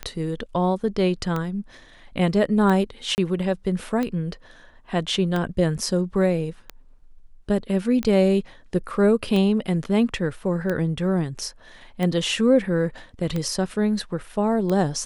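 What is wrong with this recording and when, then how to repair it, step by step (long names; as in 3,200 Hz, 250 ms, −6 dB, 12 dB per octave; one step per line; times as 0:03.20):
scratch tick 45 rpm −14 dBFS
0:03.15–0:03.18: drop-out 29 ms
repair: click removal
repair the gap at 0:03.15, 29 ms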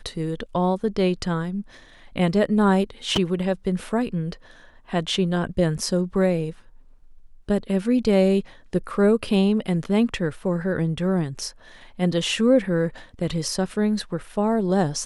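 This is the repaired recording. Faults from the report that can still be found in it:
none of them is left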